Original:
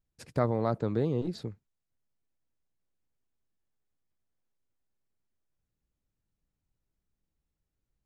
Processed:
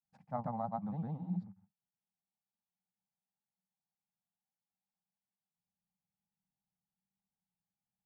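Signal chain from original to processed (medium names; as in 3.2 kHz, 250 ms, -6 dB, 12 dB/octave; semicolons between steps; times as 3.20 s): granulator, spray 100 ms, pitch spread up and down by 0 st; two resonant band-passes 390 Hz, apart 2.1 oct; trim +3.5 dB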